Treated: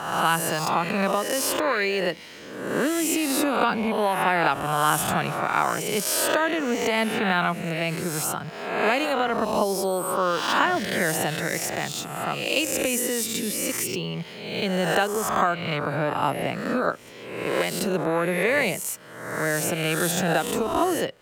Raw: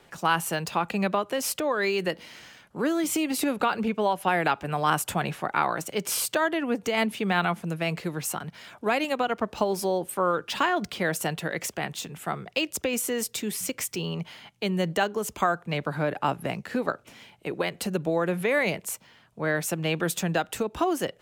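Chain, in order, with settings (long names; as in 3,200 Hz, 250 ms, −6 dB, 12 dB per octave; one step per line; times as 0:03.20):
peak hold with a rise ahead of every peak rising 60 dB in 1.03 s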